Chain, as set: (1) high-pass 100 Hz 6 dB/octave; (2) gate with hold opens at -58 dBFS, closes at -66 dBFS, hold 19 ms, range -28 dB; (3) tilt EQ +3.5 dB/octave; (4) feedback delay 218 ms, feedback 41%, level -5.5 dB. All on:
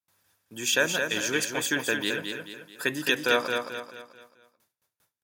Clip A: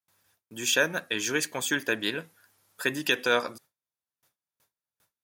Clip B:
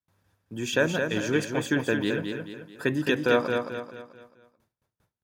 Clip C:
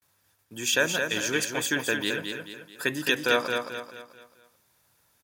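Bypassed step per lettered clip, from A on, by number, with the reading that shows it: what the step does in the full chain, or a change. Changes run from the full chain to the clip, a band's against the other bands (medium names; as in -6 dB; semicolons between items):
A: 4, echo-to-direct -4.5 dB to none; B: 3, 125 Hz band +11.5 dB; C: 1, 125 Hz band +1.5 dB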